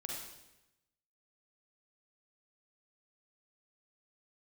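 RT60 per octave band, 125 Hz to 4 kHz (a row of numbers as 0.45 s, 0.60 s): 1.2 s, 1.0 s, 1.0 s, 0.90 s, 0.95 s, 0.90 s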